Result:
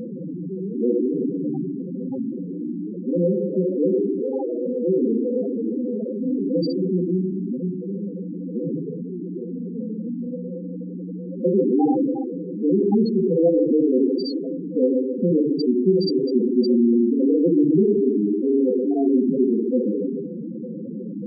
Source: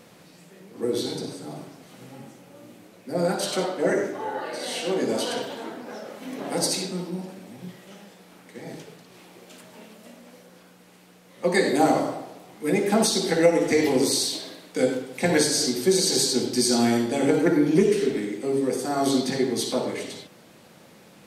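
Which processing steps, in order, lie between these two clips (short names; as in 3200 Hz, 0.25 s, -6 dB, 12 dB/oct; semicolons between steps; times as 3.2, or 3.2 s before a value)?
per-bin compression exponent 0.4; bell 580 Hz -5.5 dB 1.7 oct; loudest bins only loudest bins 4; gain +4 dB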